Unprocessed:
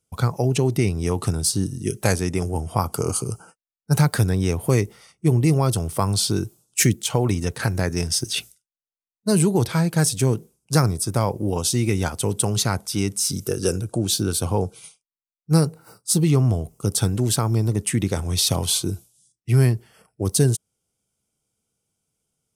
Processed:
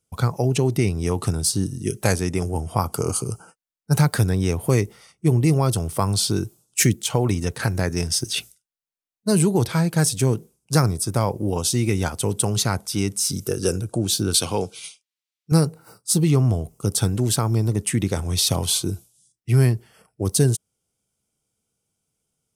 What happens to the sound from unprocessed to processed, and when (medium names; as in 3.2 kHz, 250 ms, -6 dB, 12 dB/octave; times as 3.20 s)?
14.34–15.52 s: frequency weighting D